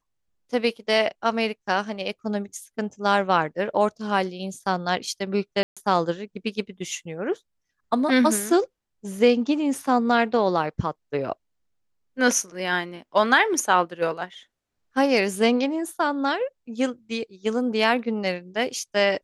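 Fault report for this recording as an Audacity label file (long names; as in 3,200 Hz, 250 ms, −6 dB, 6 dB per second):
5.630000	5.770000	drop-out 136 ms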